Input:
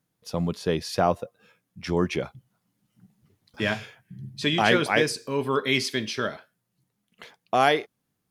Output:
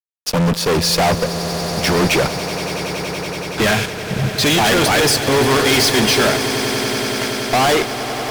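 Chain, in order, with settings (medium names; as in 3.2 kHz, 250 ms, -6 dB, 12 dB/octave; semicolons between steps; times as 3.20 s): fuzz box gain 38 dB, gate -44 dBFS; echo with a slow build-up 94 ms, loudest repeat 8, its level -15 dB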